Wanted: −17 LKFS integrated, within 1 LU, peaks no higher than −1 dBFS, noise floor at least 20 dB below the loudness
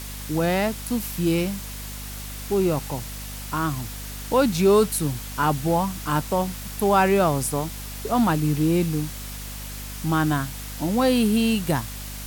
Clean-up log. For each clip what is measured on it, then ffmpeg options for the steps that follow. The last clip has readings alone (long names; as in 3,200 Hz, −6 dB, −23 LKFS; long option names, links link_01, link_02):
mains hum 50 Hz; hum harmonics up to 250 Hz; level of the hum −34 dBFS; background noise floor −35 dBFS; target noise floor −44 dBFS; integrated loudness −23.5 LKFS; sample peak −8.5 dBFS; target loudness −17.0 LKFS
→ -af "bandreject=frequency=50:width_type=h:width=4,bandreject=frequency=100:width_type=h:width=4,bandreject=frequency=150:width_type=h:width=4,bandreject=frequency=200:width_type=h:width=4,bandreject=frequency=250:width_type=h:width=4"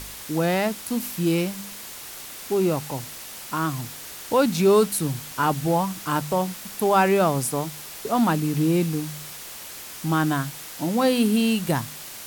mains hum none found; background noise floor −39 dBFS; target noise floor −44 dBFS
→ -af "afftdn=noise_reduction=6:noise_floor=-39"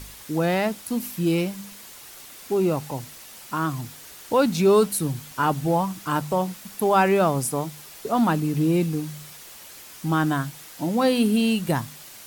background noise floor −44 dBFS; integrated loudness −23.5 LKFS; sample peak −8.5 dBFS; target loudness −17.0 LKFS
→ -af "volume=6.5dB"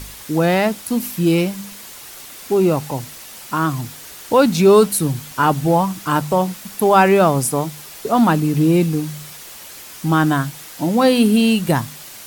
integrated loudness −17.0 LKFS; sample peak −2.0 dBFS; background noise floor −37 dBFS